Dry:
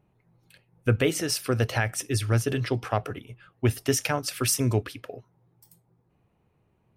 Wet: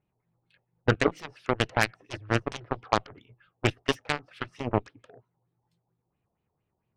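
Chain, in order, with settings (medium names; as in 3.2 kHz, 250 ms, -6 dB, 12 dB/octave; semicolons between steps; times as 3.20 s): LFO low-pass sine 4.4 Hz 730–4000 Hz; Chebyshev shaper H 7 -15 dB, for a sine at -6.5 dBFS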